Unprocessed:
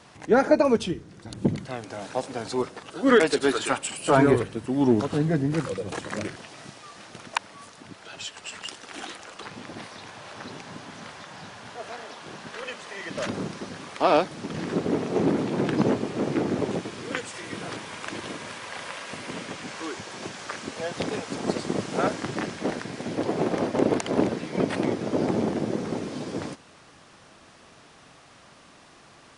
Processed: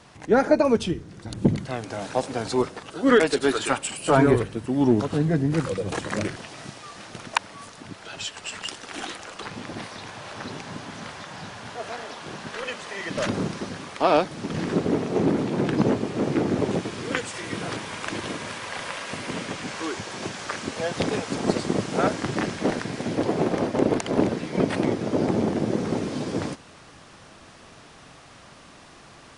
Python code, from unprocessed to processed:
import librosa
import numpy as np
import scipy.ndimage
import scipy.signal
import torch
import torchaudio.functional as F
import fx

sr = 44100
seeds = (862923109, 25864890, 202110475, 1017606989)

p1 = fx.low_shelf(x, sr, hz=94.0, db=7.0)
p2 = fx.rider(p1, sr, range_db=3, speed_s=0.5)
p3 = p1 + (p2 * librosa.db_to_amplitude(3.0))
y = p3 * librosa.db_to_amplitude(-6.0)